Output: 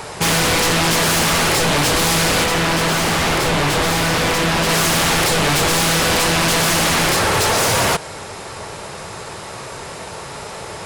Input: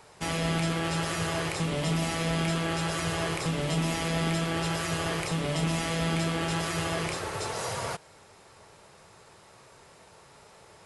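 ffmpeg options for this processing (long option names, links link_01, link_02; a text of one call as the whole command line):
ffmpeg -i in.wav -filter_complex "[0:a]aeval=exprs='0.141*sin(PI/2*5.62*val(0)/0.141)':channel_layout=same,asettb=1/sr,asplit=3[link_01][link_02][link_03];[link_01]atrim=end=2.444[link_04];[link_02]atrim=start=2.44:end=4.69,asetpts=PTS-STARTPTS,afade=type=in:duration=0.004:curve=qsin,afade=type=out:start_time=2.246:duration=0.004:curve=qsin,highshelf=frequency=4400:gain=-6.5[link_05];[link_03]atrim=start=4.686[link_06];[link_04][link_05]acrossfade=duration=0.004:curve1=hsin:curve2=qsin[link_07];[link_07][link_06]acrossfade=duration=0.004:curve1=qsin:curve2=hsin,volume=4dB" out.wav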